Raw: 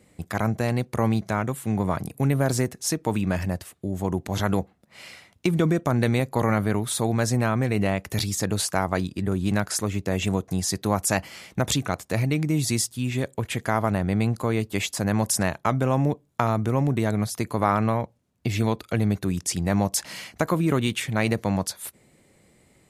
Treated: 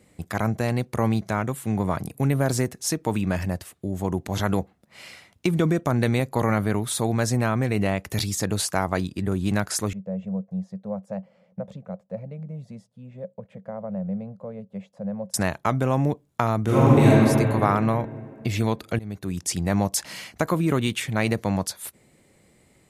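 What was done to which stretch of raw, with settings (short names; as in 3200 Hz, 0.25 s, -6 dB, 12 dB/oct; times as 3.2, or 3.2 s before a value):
9.93–15.34 double band-pass 320 Hz, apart 1.5 oct
16.62–17.08 reverb throw, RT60 2.6 s, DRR -9.5 dB
18.99–19.49 fade in, from -20 dB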